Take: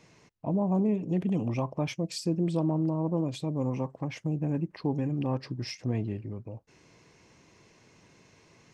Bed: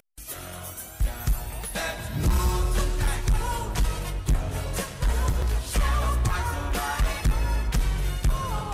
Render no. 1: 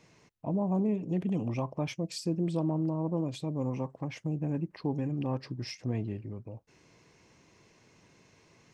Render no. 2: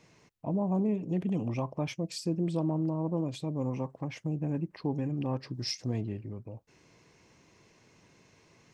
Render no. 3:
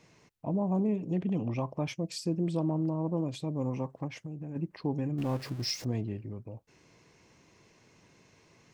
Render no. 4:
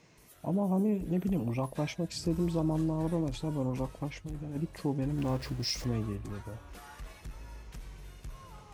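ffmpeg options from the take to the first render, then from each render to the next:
-af "volume=0.75"
-filter_complex "[0:a]asettb=1/sr,asplit=3[s0][s1][s2];[s0]atrim=end=5.544[s3];[s1]atrim=start=5.54:end=6.01,asetpts=PTS-STARTPTS,afade=t=in:d=0.004:c=qsin,afade=t=out:st=0.466:d=0.004:c=qsin,highshelf=f=3300:t=q:w=1.5:g=6.5[s4];[s2]atrim=start=6.006[s5];[s3][s4]acrossfade=d=0.004:c1=hsin:c2=qsin[s6];[s6][s5]acrossfade=d=0.004:c1=qsin:c2=hsin"
-filter_complex "[0:a]asettb=1/sr,asplit=3[s0][s1][s2];[s0]atrim=end=1.164[s3];[s1]atrim=start=1.16:end=1.6,asetpts=PTS-STARTPTS,afade=t=in:d=0.004:c=qsin,afade=t=out:st=0.436:d=0.004:c=qsin,lowpass=5400[s4];[s2]atrim=start=1.596[s5];[s3][s4]acrossfade=d=0.004:c1=hsin:c2=qsin[s6];[s6][s5]acrossfade=d=0.004:c1=qsin:c2=hsin,asplit=3[s7][s8][s9];[s7]afade=t=out:st=4.07:d=0.02[s10];[s8]acompressor=threshold=0.0126:ratio=3:attack=3.2:release=140:knee=1:detection=peak,afade=t=in:st=4.07:d=0.02,afade=t=out:st=4.55:d=0.02[s11];[s9]afade=t=in:st=4.55:d=0.02[s12];[s10][s11][s12]amix=inputs=3:normalize=0,asettb=1/sr,asplit=3[s13][s14][s15];[s13]atrim=end=5.184[s16];[s14]atrim=start=5.18:end=5.85,asetpts=PTS-STARTPTS,afade=t=in:d=0.004:c=qsin,afade=t=out:st=0.666:d=0.004:c=qsin,aeval=exprs='val(0)+0.5*0.00841*sgn(val(0))':c=same[s17];[s15]atrim=start=5.846[s18];[s16][s17]acrossfade=d=0.004:c1=hsin:c2=qsin[s19];[s19][s18]acrossfade=d=0.004:c1=qsin:c2=hsin"
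-filter_complex "[1:a]volume=0.0841[s0];[0:a][s0]amix=inputs=2:normalize=0"

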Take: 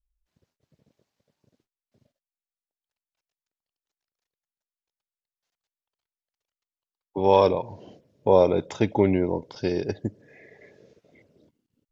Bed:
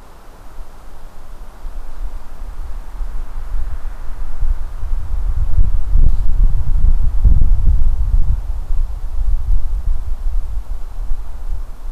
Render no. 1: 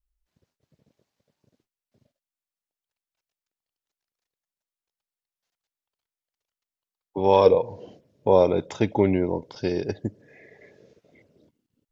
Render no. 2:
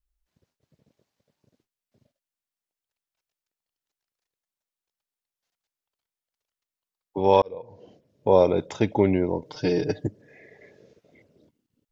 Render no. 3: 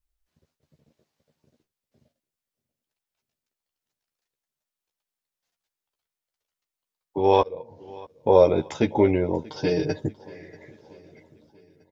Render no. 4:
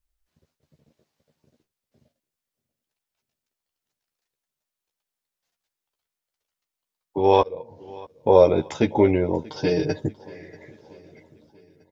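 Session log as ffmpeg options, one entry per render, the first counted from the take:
-filter_complex "[0:a]asettb=1/sr,asplit=3[s0][s1][s2];[s0]atrim=end=7.454[s3];[s1]atrim=start=7.45:end=7.86,asetpts=PTS-STARTPTS,afade=t=in:d=0.004:c=qsin,afade=t=out:st=0.406:d=0.004:c=qsin,equalizer=f=480:t=o:w=0.2:g=13[s4];[s2]atrim=start=7.856[s5];[s3][s4]acrossfade=d=0.004:c1=hsin:c2=qsin[s6];[s6][s5]acrossfade=d=0.004:c1=qsin:c2=hsin"
-filter_complex "[0:a]asettb=1/sr,asplit=3[s0][s1][s2];[s0]atrim=end=9.454[s3];[s1]atrim=start=9.45:end=10.07,asetpts=PTS-STARTPTS,afade=t=in:d=0.004:c=qsin,afade=t=out:st=0.616:d=0.004:c=qsin,aecho=1:1:6.6:0.98,atrim=end_sample=27342[s4];[s2]atrim=start=10.066[s5];[s3][s4]acrossfade=d=0.004:c1=hsin:c2=qsin[s6];[s6][s5]acrossfade=d=0.004:c1=qsin:c2=hsin,asplit=2[s7][s8];[s7]atrim=end=7.42,asetpts=PTS-STARTPTS,afade=t=out:st=7.416:d=0.004:c=hsin[s9];[s8]atrim=start=7.42,asetpts=PTS-STARTPTS,afade=t=in:d=0.93[s10];[s9][s10]concat=n=2:v=0:a=1"
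-filter_complex "[0:a]asplit=2[s0][s1];[s1]adelay=13,volume=0.562[s2];[s0][s2]amix=inputs=2:normalize=0,aecho=1:1:636|1272|1908|2544:0.075|0.039|0.0203|0.0105"
-af "volume=1.19"

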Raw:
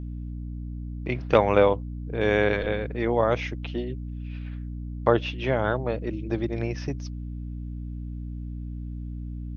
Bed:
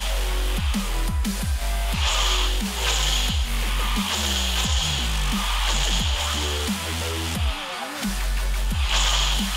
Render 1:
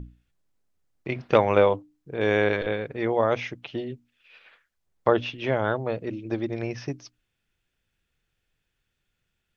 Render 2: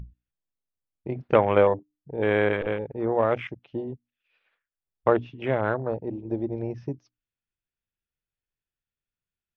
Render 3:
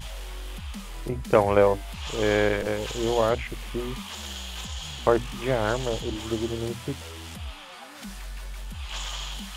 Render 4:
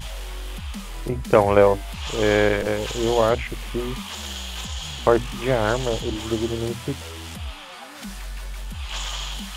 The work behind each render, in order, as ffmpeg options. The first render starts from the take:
-af "bandreject=f=60:t=h:w=6,bandreject=f=120:t=h:w=6,bandreject=f=180:t=h:w=6,bandreject=f=240:t=h:w=6,bandreject=f=300:t=h:w=6"
-af "afwtdn=0.0282,highshelf=f=4900:g=-7"
-filter_complex "[1:a]volume=0.224[s0];[0:a][s0]amix=inputs=2:normalize=0"
-af "volume=1.58,alimiter=limit=0.891:level=0:latency=1"

